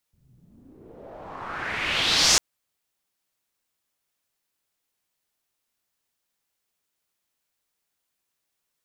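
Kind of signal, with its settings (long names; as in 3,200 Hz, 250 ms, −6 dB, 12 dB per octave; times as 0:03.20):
filter sweep on noise white, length 2.25 s lowpass, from 100 Hz, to 6,400 Hz, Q 2.7, exponential, gain ramp +28.5 dB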